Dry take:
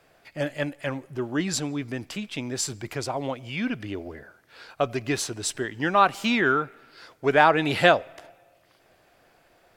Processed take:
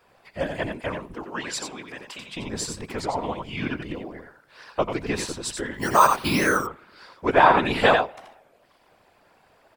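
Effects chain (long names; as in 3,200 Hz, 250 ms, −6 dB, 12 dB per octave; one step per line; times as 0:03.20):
0:01.16–0:02.35: high-pass filter 500 Hz 12 dB per octave
0:05.74–0:06.59: bad sample-rate conversion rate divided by 6×, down none, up hold
single-tap delay 88 ms −6 dB
random phases in short frames
thirty-one-band graphic EQ 1,000 Hz +8 dB, 6,300 Hz −4 dB, 12,500 Hz −7 dB
wow of a warped record 33 1/3 rpm, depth 160 cents
level −1 dB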